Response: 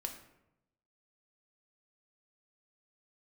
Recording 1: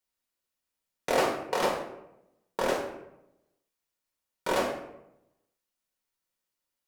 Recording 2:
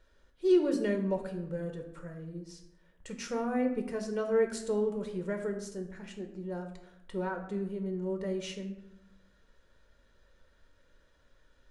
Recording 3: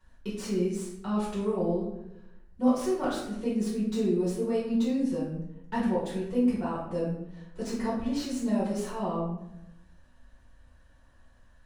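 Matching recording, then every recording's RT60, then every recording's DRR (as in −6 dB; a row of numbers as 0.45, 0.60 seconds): 2; 0.85, 0.85, 0.85 seconds; −0.5, 4.0, −9.0 decibels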